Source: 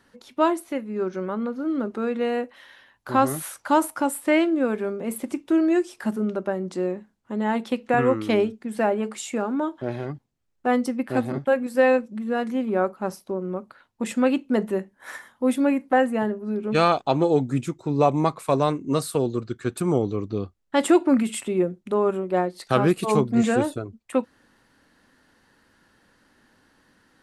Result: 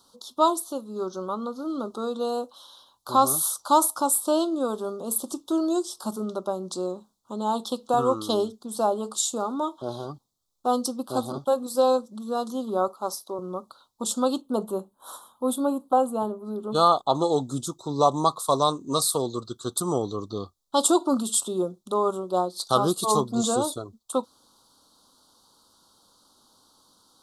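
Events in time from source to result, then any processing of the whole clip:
0:12.88–0:13.39: high-pass filter 280 Hz
0:14.41–0:17.15: parametric band 5,500 Hz −12.5 dB 0.94 octaves
whole clip: elliptic band-stop filter 1,200–3,600 Hz, stop band 60 dB; tilt shelving filter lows −9 dB, about 780 Hz; level +1.5 dB

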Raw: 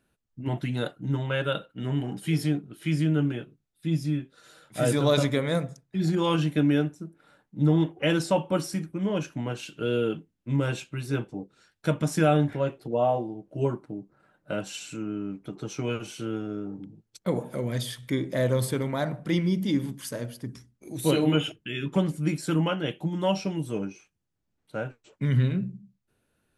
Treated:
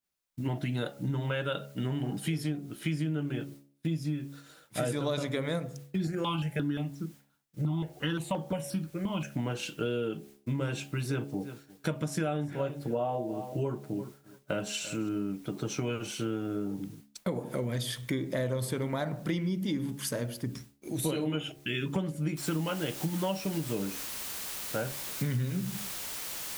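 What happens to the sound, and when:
0:06.07–0:09.34: step-sequenced phaser 5.7 Hz 940–2,700 Hz
0:11.06–0:15.09: repeating echo 342 ms, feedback 19%, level −19 dB
0:22.37: noise floor change −64 dB −42 dB
whole clip: downward expander −47 dBFS; hum removal 70.27 Hz, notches 12; downward compressor 6 to 1, threshold −32 dBFS; level +3.5 dB

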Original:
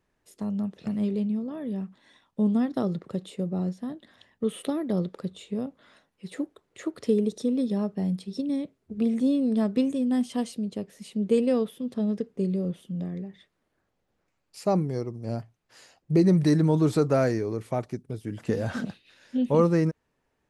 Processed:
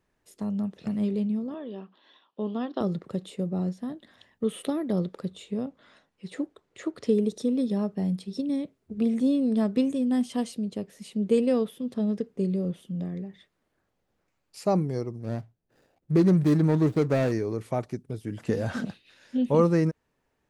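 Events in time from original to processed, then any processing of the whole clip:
0:01.54–0:02.81: loudspeaker in its box 360–4,600 Hz, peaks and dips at 370 Hz +4 dB, 1,100 Hz +4 dB, 2,100 Hz −9 dB, 3,000 Hz +8 dB
0:05.55–0:07.14: low-pass filter 8,400 Hz
0:15.20–0:17.32: running median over 41 samples

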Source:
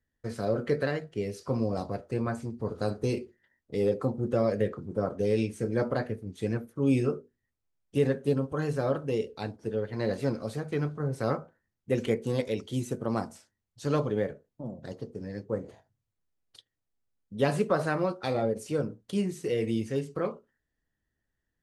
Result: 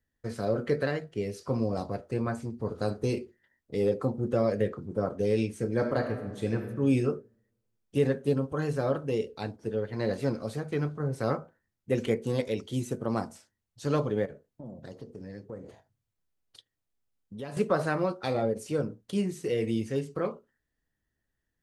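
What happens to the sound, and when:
0:05.75–0:06.67: thrown reverb, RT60 1.2 s, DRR 5 dB
0:14.25–0:17.57: downward compressor 3 to 1, threshold −39 dBFS

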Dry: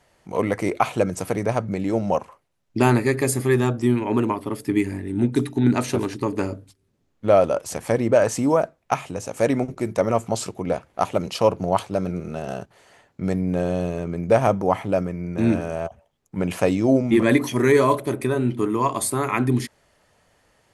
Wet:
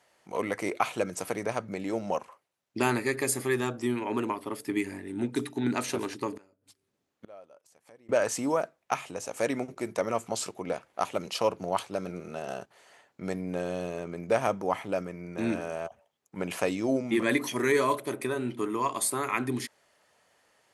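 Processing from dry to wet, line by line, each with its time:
0:06.37–0:08.09: gate with flip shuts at −23 dBFS, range −28 dB
whole clip: high-pass filter 490 Hz 6 dB per octave; dynamic equaliser 710 Hz, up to −4 dB, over −29 dBFS, Q 0.99; level −3 dB

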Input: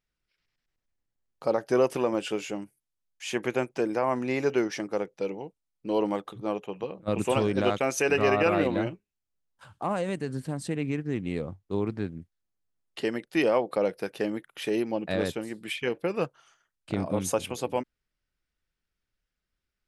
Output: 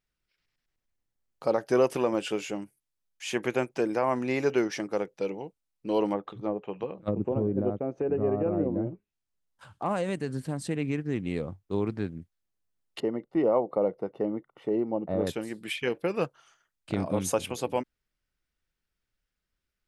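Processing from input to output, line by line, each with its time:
0:06.12–0:09.86: treble cut that deepens with the level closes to 450 Hz, closed at −24 dBFS
0:13.00–0:15.27: Savitzky-Golay smoothing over 65 samples

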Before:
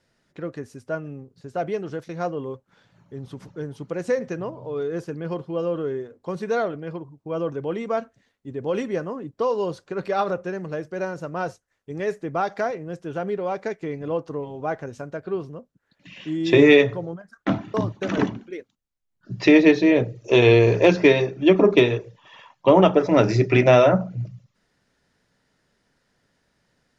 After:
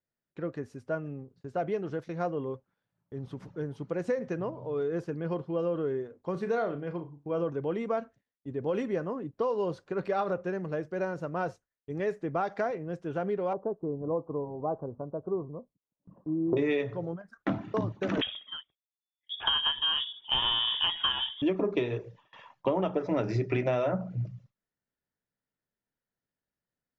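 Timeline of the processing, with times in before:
0:06.31–0:07.44: flutter between parallel walls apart 6 metres, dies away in 0.22 s
0:13.53–0:16.57: elliptic low-pass filter 1,100 Hz, stop band 50 dB
0:18.21–0:21.42: voice inversion scrambler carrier 3,500 Hz
whole clip: noise gate with hold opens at −40 dBFS; high-shelf EQ 4,200 Hz −11 dB; downward compressor, threshold −22 dBFS; level −3 dB

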